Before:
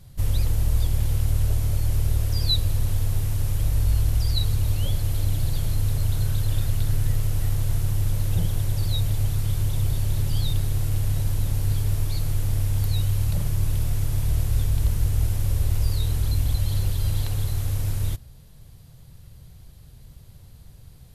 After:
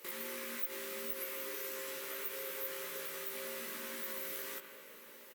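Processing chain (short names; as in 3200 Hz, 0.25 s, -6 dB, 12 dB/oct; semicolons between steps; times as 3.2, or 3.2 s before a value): HPF 330 Hz 12 dB/oct; bell 3400 Hz +6.5 dB 0.92 oct; compressor 3:1, threshold -45 dBFS, peak gain reduction 21.5 dB; resonator 500 Hz, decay 0.44 s, mix 60%; wide varispeed 3.96×; Butterworth band-stop 720 Hz, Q 3.3; doubler 17 ms -3 dB; outdoor echo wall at 210 m, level -17 dB; on a send at -7 dB: reverb RT60 3.0 s, pre-delay 42 ms; on the sum: gain +10.5 dB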